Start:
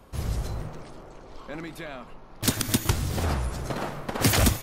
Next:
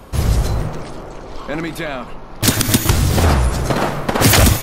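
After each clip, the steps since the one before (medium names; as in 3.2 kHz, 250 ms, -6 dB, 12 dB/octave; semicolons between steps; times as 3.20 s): loudness maximiser +14.5 dB; trim -1 dB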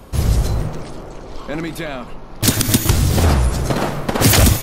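peaking EQ 1.3 kHz -3.5 dB 2.6 oct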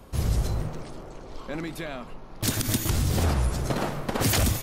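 peak limiter -6 dBFS, peak gain reduction 4 dB; trim -8.5 dB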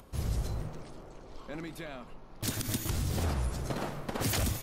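upward compressor, threshold -44 dBFS; trim -7.5 dB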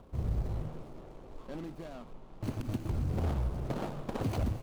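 median filter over 25 samples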